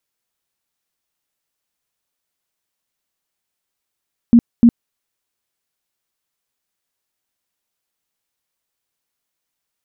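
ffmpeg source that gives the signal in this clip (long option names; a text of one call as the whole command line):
ffmpeg -f lavfi -i "aevalsrc='0.596*sin(2*PI*235*mod(t,0.3))*lt(mod(t,0.3),14/235)':duration=0.6:sample_rate=44100" out.wav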